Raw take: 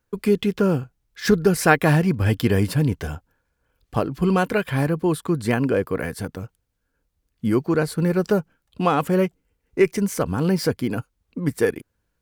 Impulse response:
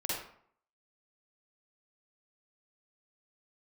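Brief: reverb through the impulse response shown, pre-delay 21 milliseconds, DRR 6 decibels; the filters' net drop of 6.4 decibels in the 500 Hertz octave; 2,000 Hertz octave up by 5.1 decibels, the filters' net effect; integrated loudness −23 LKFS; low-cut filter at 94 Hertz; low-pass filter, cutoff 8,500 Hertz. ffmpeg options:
-filter_complex "[0:a]highpass=94,lowpass=8500,equalizer=frequency=500:width_type=o:gain=-9,equalizer=frequency=2000:width_type=o:gain=7.5,asplit=2[link_01][link_02];[1:a]atrim=start_sample=2205,adelay=21[link_03];[link_02][link_03]afir=irnorm=-1:irlink=0,volume=-11dB[link_04];[link_01][link_04]amix=inputs=2:normalize=0,volume=-1dB"

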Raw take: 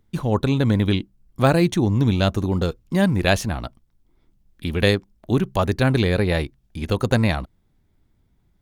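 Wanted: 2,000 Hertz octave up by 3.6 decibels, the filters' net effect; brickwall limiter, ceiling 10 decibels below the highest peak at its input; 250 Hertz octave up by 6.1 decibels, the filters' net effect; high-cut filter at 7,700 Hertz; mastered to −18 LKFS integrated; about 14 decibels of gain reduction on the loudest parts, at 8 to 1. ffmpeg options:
ffmpeg -i in.wav -af "lowpass=7700,equalizer=frequency=250:width_type=o:gain=8,equalizer=frequency=2000:width_type=o:gain=4.5,acompressor=threshold=-24dB:ratio=8,volume=13.5dB,alimiter=limit=-7.5dB:level=0:latency=1" out.wav

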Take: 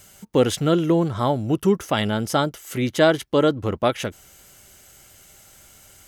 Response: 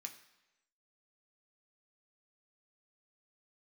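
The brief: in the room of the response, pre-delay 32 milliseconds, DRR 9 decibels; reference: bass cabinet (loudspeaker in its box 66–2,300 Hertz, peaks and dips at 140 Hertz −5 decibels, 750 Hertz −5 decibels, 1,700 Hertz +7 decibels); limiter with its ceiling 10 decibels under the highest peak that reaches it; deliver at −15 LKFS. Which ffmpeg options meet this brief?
-filter_complex "[0:a]alimiter=limit=-15dB:level=0:latency=1,asplit=2[link_01][link_02];[1:a]atrim=start_sample=2205,adelay=32[link_03];[link_02][link_03]afir=irnorm=-1:irlink=0,volume=-4.5dB[link_04];[link_01][link_04]amix=inputs=2:normalize=0,highpass=frequency=66:width=0.5412,highpass=frequency=66:width=1.3066,equalizer=frequency=140:width_type=q:width=4:gain=-5,equalizer=frequency=750:width_type=q:width=4:gain=-5,equalizer=frequency=1700:width_type=q:width=4:gain=7,lowpass=frequency=2300:width=0.5412,lowpass=frequency=2300:width=1.3066,volume=11.5dB"

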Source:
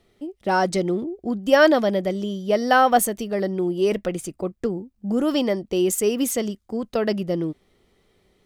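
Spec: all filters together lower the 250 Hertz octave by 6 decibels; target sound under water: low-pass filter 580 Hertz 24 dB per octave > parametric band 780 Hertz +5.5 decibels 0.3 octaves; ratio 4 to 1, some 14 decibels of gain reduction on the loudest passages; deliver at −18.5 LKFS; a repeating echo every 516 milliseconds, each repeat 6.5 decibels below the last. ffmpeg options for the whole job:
ffmpeg -i in.wav -af "equalizer=frequency=250:width_type=o:gain=-8.5,acompressor=threshold=-28dB:ratio=4,lowpass=frequency=580:width=0.5412,lowpass=frequency=580:width=1.3066,equalizer=frequency=780:width_type=o:width=0.3:gain=5.5,aecho=1:1:516|1032|1548|2064|2580|3096:0.473|0.222|0.105|0.0491|0.0231|0.0109,volume=15dB" out.wav

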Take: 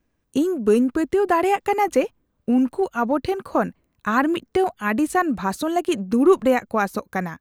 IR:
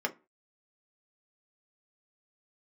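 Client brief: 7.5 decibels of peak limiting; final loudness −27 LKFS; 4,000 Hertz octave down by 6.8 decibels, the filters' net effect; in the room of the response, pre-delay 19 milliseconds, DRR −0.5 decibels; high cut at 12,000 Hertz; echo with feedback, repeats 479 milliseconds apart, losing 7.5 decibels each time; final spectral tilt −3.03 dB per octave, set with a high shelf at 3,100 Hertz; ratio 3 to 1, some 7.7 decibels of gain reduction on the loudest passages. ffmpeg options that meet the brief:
-filter_complex "[0:a]lowpass=12000,highshelf=frequency=3100:gain=-6,equalizer=frequency=4000:width_type=o:gain=-5.5,acompressor=threshold=-20dB:ratio=3,alimiter=limit=-19dB:level=0:latency=1,aecho=1:1:479|958|1437|1916|2395:0.422|0.177|0.0744|0.0312|0.0131,asplit=2[link_01][link_02];[1:a]atrim=start_sample=2205,adelay=19[link_03];[link_02][link_03]afir=irnorm=-1:irlink=0,volume=-6dB[link_04];[link_01][link_04]amix=inputs=2:normalize=0,volume=-2.5dB"

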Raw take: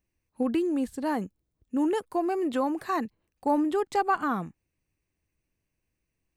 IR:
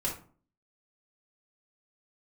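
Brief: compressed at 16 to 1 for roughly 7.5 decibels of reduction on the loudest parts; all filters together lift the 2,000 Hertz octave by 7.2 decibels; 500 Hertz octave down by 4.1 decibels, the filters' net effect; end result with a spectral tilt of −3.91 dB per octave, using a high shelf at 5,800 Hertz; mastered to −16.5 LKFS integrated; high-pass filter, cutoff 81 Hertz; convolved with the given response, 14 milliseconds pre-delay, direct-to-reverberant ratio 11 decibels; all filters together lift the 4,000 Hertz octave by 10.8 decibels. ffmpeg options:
-filter_complex "[0:a]highpass=81,equalizer=frequency=500:width_type=o:gain=-6.5,equalizer=frequency=2000:width_type=o:gain=8.5,equalizer=frequency=4000:width_type=o:gain=8.5,highshelf=frequency=5800:gain=7,acompressor=threshold=-26dB:ratio=16,asplit=2[link_01][link_02];[1:a]atrim=start_sample=2205,adelay=14[link_03];[link_02][link_03]afir=irnorm=-1:irlink=0,volume=-16dB[link_04];[link_01][link_04]amix=inputs=2:normalize=0,volume=15.5dB"

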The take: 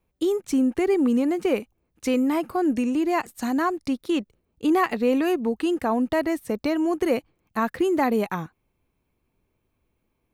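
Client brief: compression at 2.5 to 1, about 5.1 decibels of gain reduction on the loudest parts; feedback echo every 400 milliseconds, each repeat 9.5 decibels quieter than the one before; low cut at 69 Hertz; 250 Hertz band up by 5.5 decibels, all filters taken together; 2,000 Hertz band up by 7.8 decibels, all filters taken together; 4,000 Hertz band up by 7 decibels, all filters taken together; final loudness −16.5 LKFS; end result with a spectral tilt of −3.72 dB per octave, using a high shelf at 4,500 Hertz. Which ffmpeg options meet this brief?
ffmpeg -i in.wav -af "highpass=69,equalizer=frequency=250:width_type=o:gain=6.5,equalizer=frequency=2000:width_type=o:gain=8,equalizer=frequency=4000:width_type=o:gain=8,highshelf=frequency=4500:gain=-4,acompressor=threshold=-20dB:ratio=2.5,aecho=1:1:400|800|1200|1600:0.335|0.111|0.0365|0.012,volume=6.5dB" out.wav

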